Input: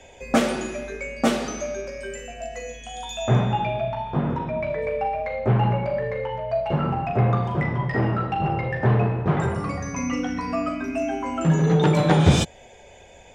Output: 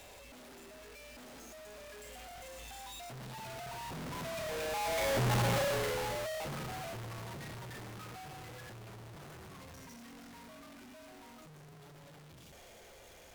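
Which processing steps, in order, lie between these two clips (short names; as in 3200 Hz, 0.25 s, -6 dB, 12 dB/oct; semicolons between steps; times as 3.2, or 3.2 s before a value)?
infinite clipping; Doppler pass-by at 5.36, 19 m/s, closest 6.2 m; gain -5.5 dB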